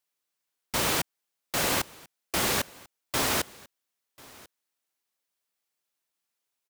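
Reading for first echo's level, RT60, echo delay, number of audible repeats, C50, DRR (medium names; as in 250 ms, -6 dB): -23.5 dB, no reverb, 1042 ms, 1, no reverb, no reverb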